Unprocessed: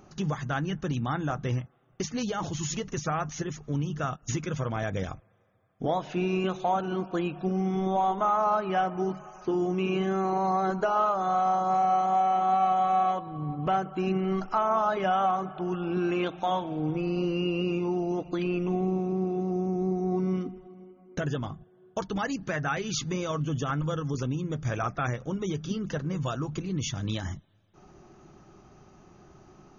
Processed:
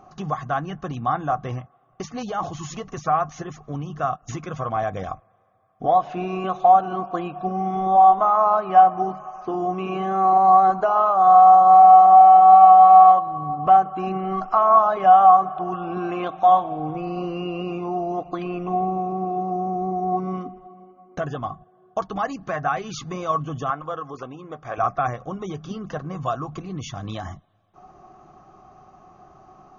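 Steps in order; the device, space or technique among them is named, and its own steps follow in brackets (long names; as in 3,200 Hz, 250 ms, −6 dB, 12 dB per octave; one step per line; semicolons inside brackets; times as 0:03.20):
0:23.70–0:24.78: bass and treble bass −14 dB, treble −9 dB
inside a helmet (high-shelf EQ 5,500 Hz −6 dB; hollow resonant body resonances 740/1,100 Hz, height 17 dB, ringing for 30 ms)
level −1.5 dB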